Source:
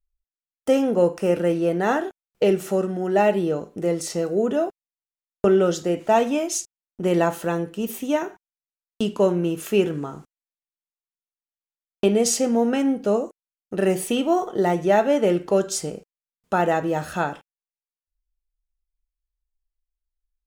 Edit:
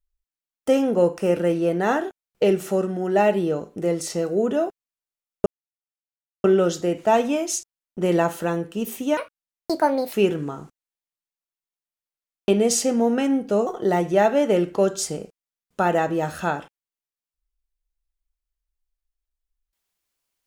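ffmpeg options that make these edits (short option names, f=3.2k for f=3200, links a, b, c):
-filter_complex "[0:a]asplit=5[a][b][c][d][e];[a]atrim=end=5.46,asetpts=PTS-STARTPTS,afade=t=out:st=5.456:d=0.004:c=hsin,apad=pad_dur=0.98[f];[b]atrim=start=5.46:end=8.194,asetpts=PTS-STARTPTS,afade=t=in:d=0.004:c=hsin[g];[c]atrim=start=8.19:end=9.69,asetpts=PTS-STARTPTS,asetrate=68355,aresample=44100,atrim=end_sample=42677,asetpts=PTS-STARTPTS[h];[d]atrim=start=9.686:end=13.222[i];[e]atrim=start=14.398[j];[f][g]concat=n=2:v=0:a=1[k];[k][h]acrossfade=d=0.004:c1=hsin:c2=hsin[l];[l][i]acrossfade=d=0.004:c1=hsin:c2=hsin[m];[m][j]acrossfade=d=0.004:c1=hsin:c2=hsin"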